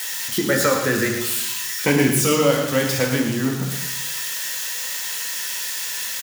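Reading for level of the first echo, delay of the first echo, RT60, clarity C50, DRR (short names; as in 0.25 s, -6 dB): -9.0 dB, 0.113 s, 1.0 s, 4.0 dB, 0.0 dB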